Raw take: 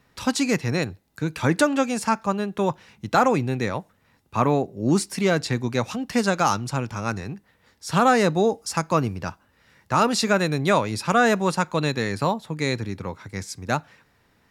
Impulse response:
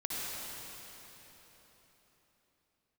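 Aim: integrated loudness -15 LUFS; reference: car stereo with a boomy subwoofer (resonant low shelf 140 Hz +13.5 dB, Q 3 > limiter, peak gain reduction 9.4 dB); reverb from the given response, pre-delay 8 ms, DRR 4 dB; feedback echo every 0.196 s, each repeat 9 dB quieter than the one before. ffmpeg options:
-filter_complex "[0:a]aecho=1:1:196|392|588|784:0.355|0.124|0.0435|0.0152,asplit=2[a][b];[1:a]atrim=start_sample=2205,adelay=8[c];[b][c]afir=irnorm=-1:irlink=0,volume=-9dB[d];[a][d]amix=inputs=2:normalize=0,lowshelf=f=140:t=q:w=3:g=13.5,volume=5.5dB,alimiter=limit=-5dB:level=0:latency=1"

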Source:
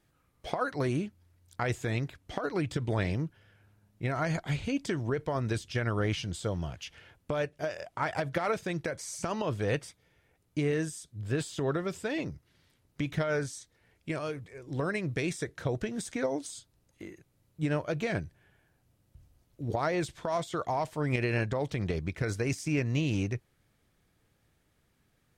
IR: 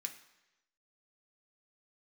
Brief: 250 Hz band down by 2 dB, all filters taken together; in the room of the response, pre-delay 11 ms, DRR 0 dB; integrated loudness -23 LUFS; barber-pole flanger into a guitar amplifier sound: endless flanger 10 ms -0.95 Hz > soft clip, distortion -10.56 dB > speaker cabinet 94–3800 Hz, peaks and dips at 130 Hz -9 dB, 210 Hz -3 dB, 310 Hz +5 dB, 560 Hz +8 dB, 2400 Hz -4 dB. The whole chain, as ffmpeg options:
-filter_complex "[0:a]equalizer=f=250:t=o:g=-5.5,asplit=2[a][b];[1:a]atrim=start_sample=2205,adelay=11[c];[b][c]afir=irnorm=-1:irlink=0,volume=2.5dB[d];[a][d]amix=inputs=2:normalize=0,asplit=2[e][f];[f]adelay=10,afreqshift=-0.95[g];[e][g]amix=inputs=2:normalize=1,asoftclip=threshold=-32dB,highpass=94,equalizer=f=130:t=q:w=4:g=-9,equalizer=f=210:t=q:w=4:g=-3,equalizer=f=310:t=q:w=4:g=5,equalizer=f=560:t=q:w=4:g=8,equalizer=f=2.4k:t=q:w=4:g=-4,lowpass=f=3.8k:w=0.5412,lowpass=f=3.8k:w=1.3066,volume=15.5dB"

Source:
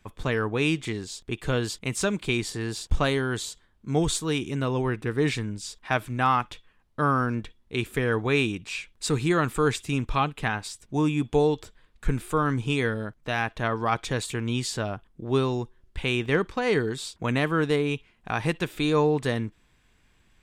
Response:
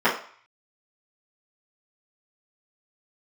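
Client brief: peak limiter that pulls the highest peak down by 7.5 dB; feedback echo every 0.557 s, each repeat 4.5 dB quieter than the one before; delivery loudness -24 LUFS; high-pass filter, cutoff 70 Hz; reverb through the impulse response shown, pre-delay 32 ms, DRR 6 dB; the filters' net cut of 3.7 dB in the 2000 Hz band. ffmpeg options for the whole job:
-filter_complex "[0:a]highpass=70,equalizer=f=2k:t=o:g=-5,alimiter=limit=-19dB:level=0:latency=1,aecho=1:1:557|1114|1671|2228|2785|3342|3899|4456|5013:0.596|0.357|0.214|0.129|0.0772|0.0463|0.0278|0.0167|0.01,asplit=2[a][b];[1:a]atrim=start_sample=2205,adelay=32[c];[b][c]afir=irnorm=-1:irlink=0,volume=-25.5dB[d];[a][d]amix=inputs=2:normalize=0,volume=4dB"

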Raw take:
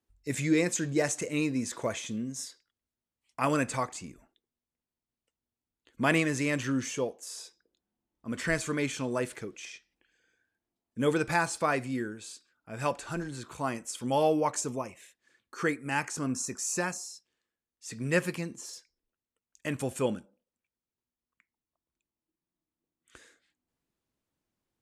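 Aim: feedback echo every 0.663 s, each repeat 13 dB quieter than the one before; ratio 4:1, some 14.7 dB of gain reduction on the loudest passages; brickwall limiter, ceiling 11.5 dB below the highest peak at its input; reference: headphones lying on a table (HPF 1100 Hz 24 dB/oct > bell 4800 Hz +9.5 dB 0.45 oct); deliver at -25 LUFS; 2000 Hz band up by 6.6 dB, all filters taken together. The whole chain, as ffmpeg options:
-af "equalizer=f=2k:t=o:g=8,acompressor=threshold=-36dB:ratio=4,alimiter=level_in=7.5dB:limit=-24dB:level=0:latency=1,volume=-7.5dB,highpass=f=1.1k:w=0.5412,highpass=f=1.1k:w=1.3066,equalizer=f=4.8k:t=o:w=0.45:g=9.5,aecho=1:1:663|1326|1989:0.224|0.0493|0.0108,volume=18dB"

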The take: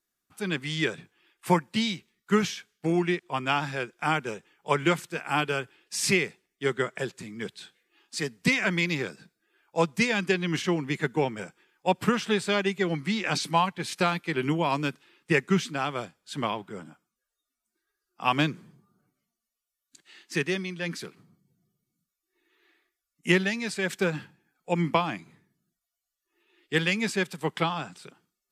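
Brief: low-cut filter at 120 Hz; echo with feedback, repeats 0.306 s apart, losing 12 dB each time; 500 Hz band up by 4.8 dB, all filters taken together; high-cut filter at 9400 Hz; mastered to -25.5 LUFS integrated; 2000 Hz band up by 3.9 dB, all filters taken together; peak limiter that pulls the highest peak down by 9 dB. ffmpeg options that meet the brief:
-af "highpass=120,lowpass=9.4k,equalizer=f=500:t=o:g=6,equalizer=f=2k:t=o:g=4.5,alimiter=limit=-13.5dB:level=0:latency=1,aecho=1:1:306|612|918:0.251|0.0628|0.0157,volume=1.5dB"

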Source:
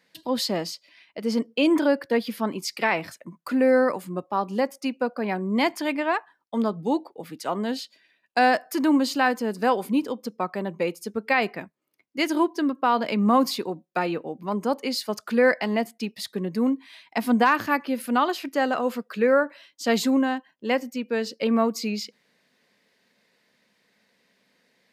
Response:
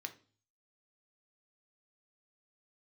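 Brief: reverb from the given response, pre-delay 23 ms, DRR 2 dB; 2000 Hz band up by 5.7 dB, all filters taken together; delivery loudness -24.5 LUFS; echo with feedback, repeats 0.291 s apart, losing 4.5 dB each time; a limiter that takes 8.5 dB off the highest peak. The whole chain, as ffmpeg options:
-filter_complex "[0:a]equalizer=f=2k:t=o:g=7,alimiter=limit=-13dB:level=0:latency=1,aecho=1:1:291|582|873|1164|1455|1746|2037|2328|2619:0.596|0.357|0.214|0.129|0.0772|0.0463|0.0278|0.0167|0.01,asplit=2[a][b];[1:a]atrim=start_sample=2205,adelay=23[c];[b][c]afir=irnorm=-1:irlink=0,volume=0dB[d];[a][d]amix=inputs=2:normalize=0,volume=-2dB"

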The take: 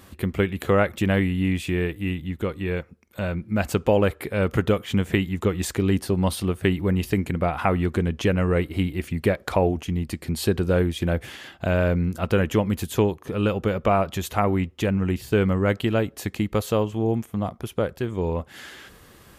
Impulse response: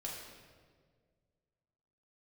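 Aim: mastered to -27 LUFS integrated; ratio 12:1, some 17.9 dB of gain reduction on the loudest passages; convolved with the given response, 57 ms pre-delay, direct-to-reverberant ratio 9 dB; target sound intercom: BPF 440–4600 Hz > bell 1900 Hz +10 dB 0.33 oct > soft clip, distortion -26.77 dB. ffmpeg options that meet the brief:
-filter_complex "[0:a]acompressor=threshold=-34dB:ratio=12,asplit=2[a][b];[1:a]atrim=start_sample=2205,adelay=57[c];[b][c]afir=irnorm=-1:irlink=0,volume=-8.5dB[d];[a][d]amix=inputs=2:normalize=0,highpass=440,lowpass=4.6k,equalizer=f=1.9k:t=o:w=0.33:g=10,asoftclip=threshold=-22.5dB,volume=15.5dB"

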